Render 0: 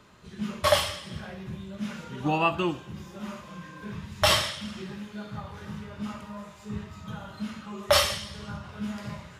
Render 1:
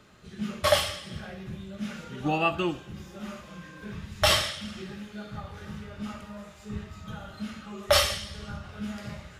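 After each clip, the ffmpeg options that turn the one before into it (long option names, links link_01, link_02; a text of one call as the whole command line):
ffmpeg -i in.wav -af "bandreject=frequency=990:width=5.7,asubboost=boost=3.5:cutoff=60" out.wav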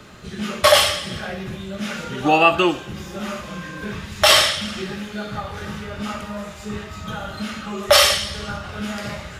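ffmpeg -i in.wav -filter_complex "[0:a]acrossover=split=310|1800[link_01][link_02][link_03];[link_01]acompressor=threshold=-44dB:ratio=6[link_04];[link_04][link_02][link_03]amix=inputs=3:normalize=0,alimiter=level_in=14dB:limit=-1dB:release=50:level=0:latency=1,volume=-1dB" out.wav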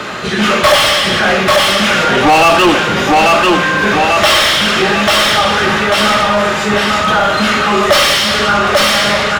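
ffmpeg -i in.wav -filter_complex "[0:a]aecho=1:1:842|1684|2526|3368:0.473|0.156|0.0515|0.017,asplit=2[link_01][link_02];[link_02]highpass=frequency=720:poles=1,volume=32dB,asoftclip=type=tanh:threshold=-1.5dB[link_03];[link_01][link_03]amix=inputs=2:normalize=0,lowpass=frequency=2400:poles=1,volume=-6dB,volume=1dB" out.wav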